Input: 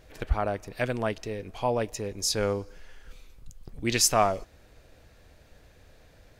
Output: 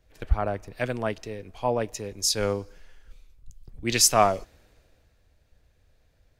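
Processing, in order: three-band expander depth 40%

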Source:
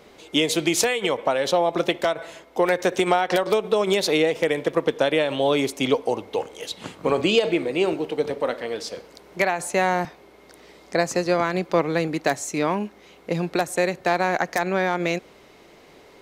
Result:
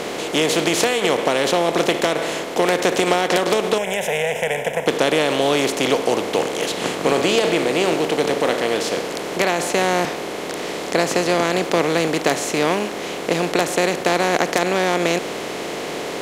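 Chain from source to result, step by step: per-bin compression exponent 0.4; 3.78–4.87 fixed phaser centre 1200 Hz, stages 6; gain -3 dB

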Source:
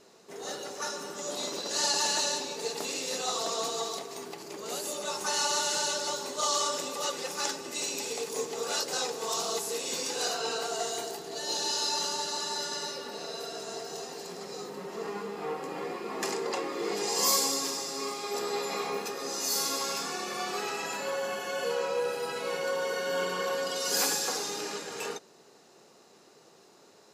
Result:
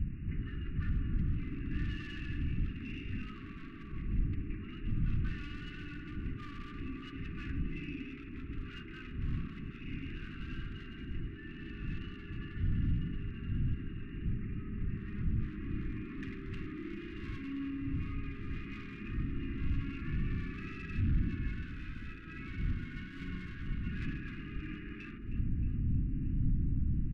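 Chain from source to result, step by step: wind noise 140 Hz -38 dBFS; brick-wall FIR low-pass 2900 Hz; one-sided clip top -31 dBFS; bell 1400 Hz -9 dB 0.24 oct; feedback echo 0.312 s, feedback 53%, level -15 dB; wow and flutter 18 cents; narrowing echo 62 ms, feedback 83%, band-pass 330 Hz, level -5 dB; soft clip -29.5 dBFS, distortion -12 dB; compressor 4:1, threshold -46 dBFS, peak gain reduction 12 dB; inverse Chebyshev band-stop 440–960 Hz, stop band 40 dB; tilt -2.5 dB/oct; gain +7 dB

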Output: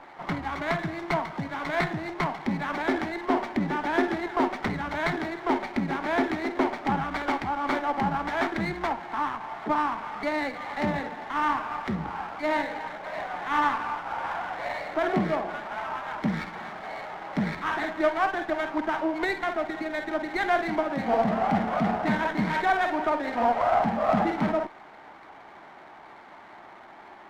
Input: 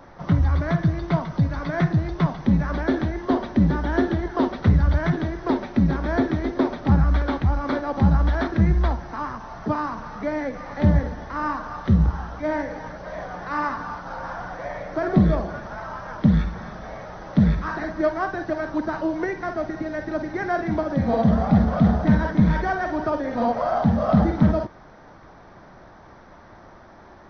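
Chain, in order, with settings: speaker cabinet 340–3500 Hz, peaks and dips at 520 Hz -7 dB, 830 Hz +5 dB, 2200 Hz +10 dB; running maximum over 5 samples

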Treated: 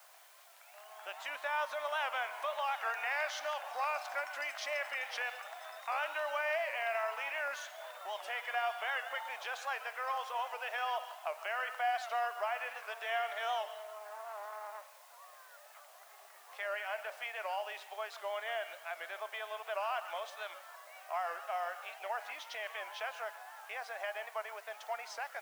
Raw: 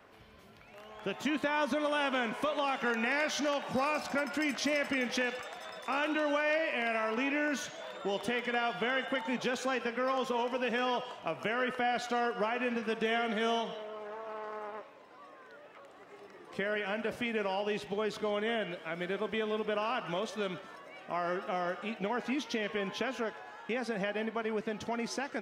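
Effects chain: high shelf 2400 Hz -8 dB; added noise white -61 dBFS; Chebyshev high-pass 660 Hz, order 4; record warp 78 rpm, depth 100 cents

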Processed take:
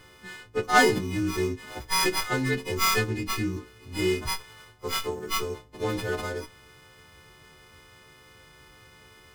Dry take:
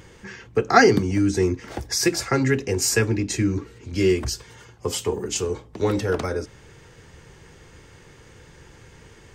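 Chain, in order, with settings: frequency quantiser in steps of 3 st; running maximum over 5 samples; gain -6.5 dB

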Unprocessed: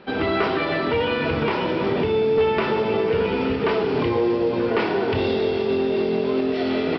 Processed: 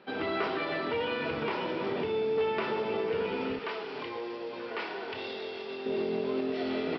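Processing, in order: HPF 250 Hz 6 dB/oct, from 3.59 s 1100 Hz, from 5.86 s 150 Hz; gain -8.5 dB

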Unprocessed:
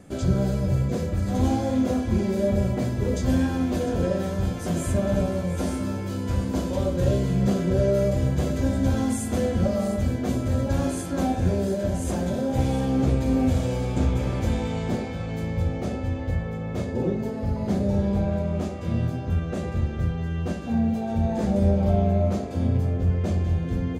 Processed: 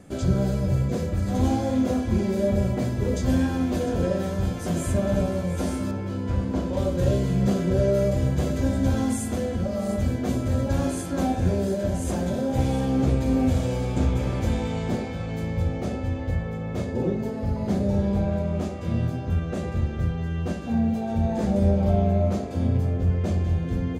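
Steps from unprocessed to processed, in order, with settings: 5.91–6.77 LPF 2500 Hz 6 dB/oct; 9.27–9.89 compressor 2.5:1, threshold -24 dBFS, peak gain reduction 5 dB

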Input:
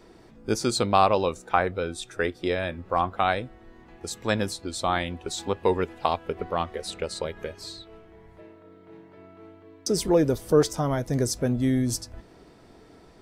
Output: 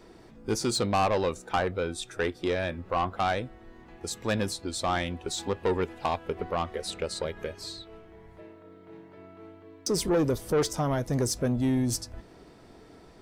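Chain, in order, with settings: soft clip -19.5 dBFS, distortion -10 dB

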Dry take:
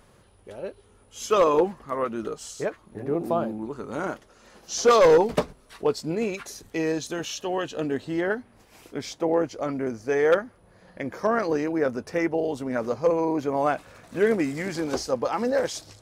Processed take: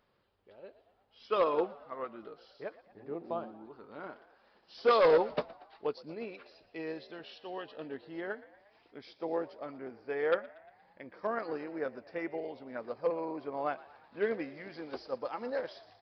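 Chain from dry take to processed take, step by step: low shelf 180 Hz -10.5 dB; on a send: frequency-shifting echo 0.117 s, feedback 58%, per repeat +64 Hz, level -15.5 dB; on the sum: downsampling 11025 Hz; upward expander 1.5:1, over -32 dBFS; gain -6 dB

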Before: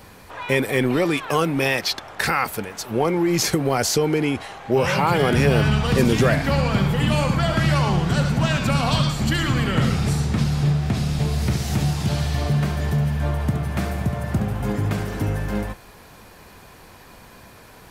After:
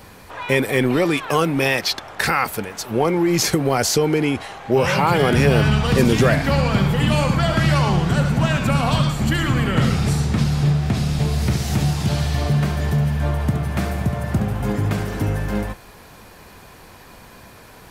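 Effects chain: 8.04–9.77 dynamic EQ 4700 Hz, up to -6 dB, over -40 dBFS, Q 1.2; gain +2 dB

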